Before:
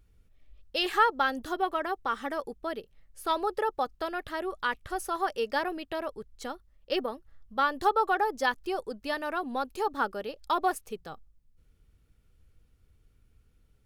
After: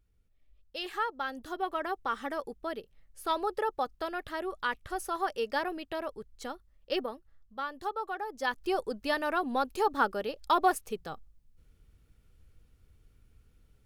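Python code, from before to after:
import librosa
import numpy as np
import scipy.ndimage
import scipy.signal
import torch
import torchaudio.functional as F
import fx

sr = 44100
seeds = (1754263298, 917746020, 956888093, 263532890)

y = fx.gain(x, sr, db=fx.line((1.17, -9.0), (1.87, -2.0), (6.97, -2.0), (7.62, -10.0), (8.25, -10.0), (8.7, 2.0)))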